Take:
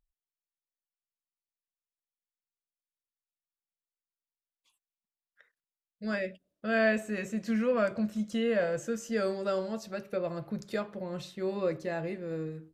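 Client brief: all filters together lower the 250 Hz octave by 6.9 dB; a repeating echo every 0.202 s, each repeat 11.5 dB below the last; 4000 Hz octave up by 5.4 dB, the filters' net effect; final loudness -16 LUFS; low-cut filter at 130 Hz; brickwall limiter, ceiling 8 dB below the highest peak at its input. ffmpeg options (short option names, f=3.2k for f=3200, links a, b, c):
-af "highpass=130,equalizer=f=250:t=o:g=-8,equalizer=f=4k:t=o:g=7,alimiter=level_in=0.5dB:limit=-24dB:level=0:latency=1,volume=-0.5dB,aecho=1:1:202|404|606:0.266|0.0718|0.0194,volume=19.5dB"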